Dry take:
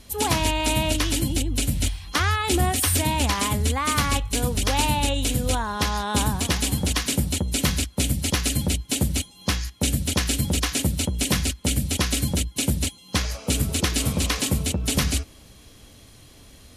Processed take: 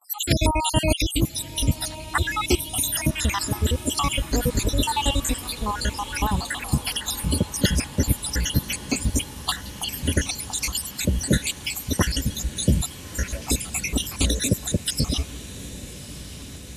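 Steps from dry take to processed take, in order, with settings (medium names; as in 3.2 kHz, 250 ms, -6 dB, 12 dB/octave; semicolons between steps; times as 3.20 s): random holes in the spectrogram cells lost 72%; gate with hold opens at -54 dBFS; echo that smears into a reverb 1219 ms, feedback 69%, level -15 dB; trim +4.5 dB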